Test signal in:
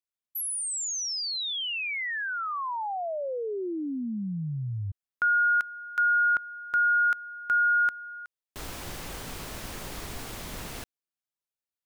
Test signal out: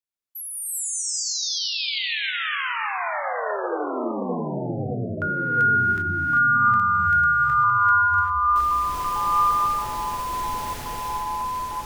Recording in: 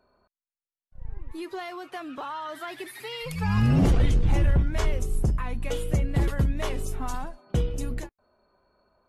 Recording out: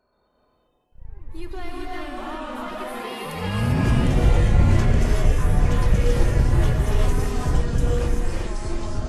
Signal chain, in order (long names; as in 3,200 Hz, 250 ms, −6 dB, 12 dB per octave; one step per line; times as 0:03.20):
delay with pitch and tempo change per echo 127 ms, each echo −3 semitones, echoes 3
reverb whose tail is shaped and stops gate 420 ms rising, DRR −3 dB
level −2.5 dB